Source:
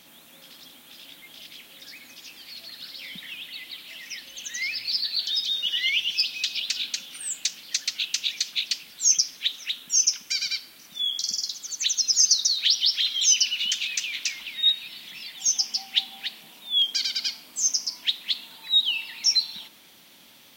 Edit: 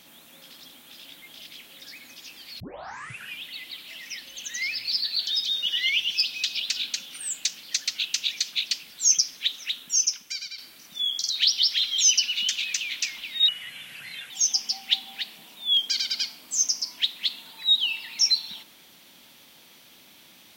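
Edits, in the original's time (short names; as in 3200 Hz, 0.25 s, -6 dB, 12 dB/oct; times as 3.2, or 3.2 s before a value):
2.6 tape start 0.79 s
9.8–10.58 fade out, to -11.5 dB
11.3–12.53 cut
14.71–15.35 speed 78%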